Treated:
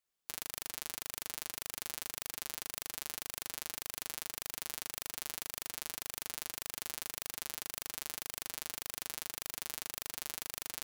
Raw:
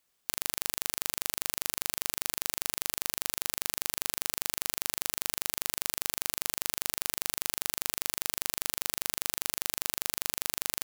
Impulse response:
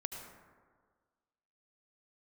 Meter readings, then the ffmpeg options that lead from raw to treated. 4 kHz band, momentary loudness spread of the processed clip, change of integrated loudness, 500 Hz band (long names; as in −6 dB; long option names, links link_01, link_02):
−8.5 dB, 0 LU, −8.5 dB, −8.0 dB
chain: -af "aeval=exprs='0.841*(cos(1*acos(clip(val(0)/0.841,-1,1)))-cos(1*PI/2))+0.211*(cos(2*acos(clip(val(0)/0.841,-1,1)))-cos(2*PI/2))':channel_layout=same,flanger=delay=1.6:depth=5.3:regen=-33:speed=1.8:shape=sinusoidal,volume=-8dB"